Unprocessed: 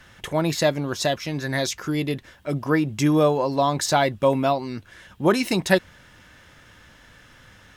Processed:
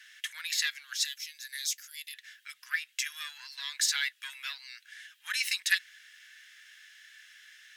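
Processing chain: single-diode clipper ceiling -9 dBFS; elliptic high-pass 1.7 kHz, stop band 70 dB; 1.05–2.14 s: differentiator

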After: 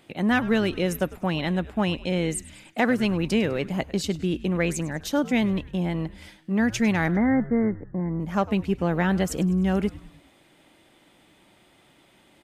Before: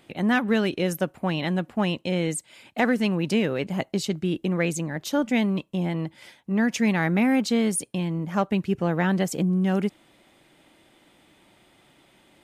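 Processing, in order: 7.08–8.20 s: Chebyshev low-pass 2.1 kHz, order 10; frequency-shifting echo 101 ms, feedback 53%, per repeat -120 Hz, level -18 dB

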